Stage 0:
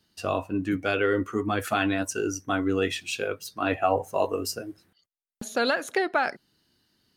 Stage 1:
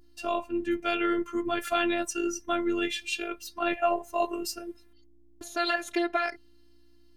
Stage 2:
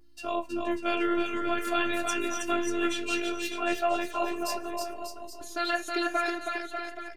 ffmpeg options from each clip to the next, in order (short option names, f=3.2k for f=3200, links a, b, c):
-af "adynamicequalizer=threshold=0.00708:dfrequency=2700:dqfactor=1.2:tfrequency=2700:tqfactor=1.2:attack=5:release=100:ratio=0.375:range=2.5:mode=boostabove:tftype=bell,aeval=exprs='val(0)+0.00282*(sin(2*PI*60*n/s)+sin(2*PI*2*60*n/s)/2+sin(2*PI*3*60*n/s)/3+sin(2*PI*4*60*n/s)/4+sin(2*PI*5*60*n/s)/5)':c=same,afftfilt=real='hypot(re,im)*cos(PI*b)':imag='0':win_size=512:overlap=0.75"
-af "flanger=delay=9:depth=6.9:regen=58:speed=0.49:shape=triangular,aecho=1:1:320|592|823.2|1020|1187:0.631|0.398|0.251|0.158|0.1,volume=2.5dB"